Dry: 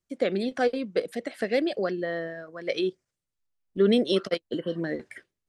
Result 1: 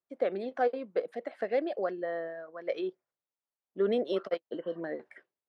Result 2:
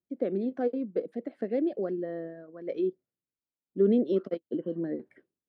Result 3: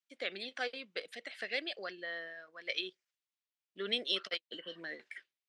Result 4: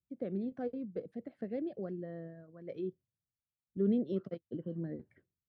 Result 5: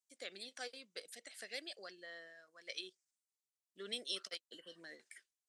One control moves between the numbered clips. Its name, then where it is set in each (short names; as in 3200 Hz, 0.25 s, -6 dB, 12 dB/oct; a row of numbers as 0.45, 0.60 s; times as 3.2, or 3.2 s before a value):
band-pass, frequency: 790, 290, 3000, 110, 7900 Hz